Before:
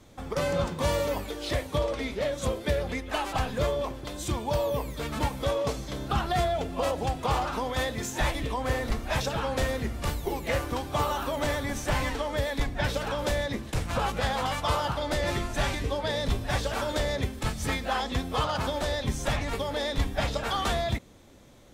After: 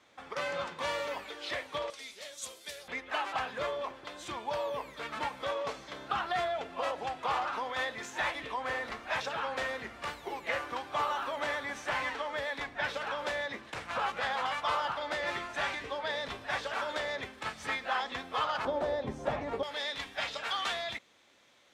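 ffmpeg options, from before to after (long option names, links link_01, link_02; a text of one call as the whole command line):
ffmpeg -i in.wav -af "asetnsamples=nb_out_samples=441:pad=0,asendcmd='1.9 bandpass f 7400;2.88 bandpass f 1600;18.65 bandpass f 580;19.63 bandpass f 2500',bandpass=frequency=1900:width_type=q:width=0.81:csg=0" out.wav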